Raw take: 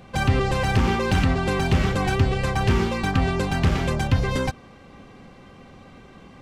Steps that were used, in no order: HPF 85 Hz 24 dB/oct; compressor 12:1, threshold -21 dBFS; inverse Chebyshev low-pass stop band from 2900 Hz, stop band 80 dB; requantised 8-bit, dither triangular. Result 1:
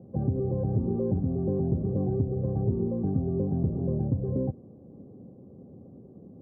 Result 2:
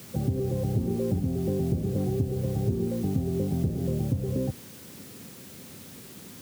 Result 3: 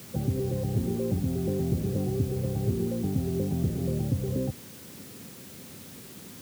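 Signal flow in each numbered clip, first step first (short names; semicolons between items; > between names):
requantised > inverse Chebyshev low-pass > compressor > HPF; inverse Chebyshev low-pass > requantised > compressor > HPF; compressor > inverse Chebyshev low-pass > requantised > HPF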